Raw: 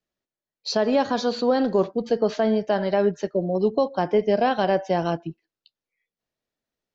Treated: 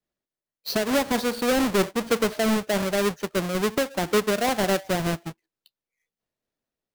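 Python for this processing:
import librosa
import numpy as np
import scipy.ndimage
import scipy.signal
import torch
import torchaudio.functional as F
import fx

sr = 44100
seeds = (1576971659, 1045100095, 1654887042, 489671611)

y = fx.halfwave_hold(x, sr)
y = fx.am_noise(y, sr, seeds[0], hz=5.7, depth_pct=60)
y = y * 10.0 ** (-3.5 / 20.0)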